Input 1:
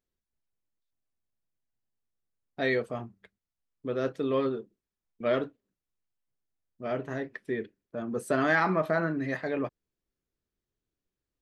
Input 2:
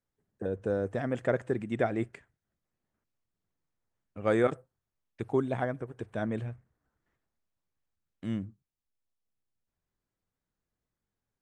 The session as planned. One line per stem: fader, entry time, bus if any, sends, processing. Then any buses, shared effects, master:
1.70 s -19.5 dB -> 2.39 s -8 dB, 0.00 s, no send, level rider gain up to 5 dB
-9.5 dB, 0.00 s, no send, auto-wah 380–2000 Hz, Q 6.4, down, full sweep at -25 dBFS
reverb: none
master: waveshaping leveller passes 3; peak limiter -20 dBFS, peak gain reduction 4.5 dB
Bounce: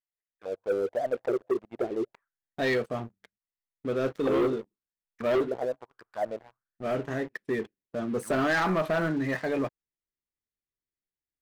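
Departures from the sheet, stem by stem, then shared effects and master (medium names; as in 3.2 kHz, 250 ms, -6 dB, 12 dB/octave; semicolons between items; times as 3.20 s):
stem 1: missing level rider gain up to 5 dB; stem 2 -9.5 dB -> +0.5 dB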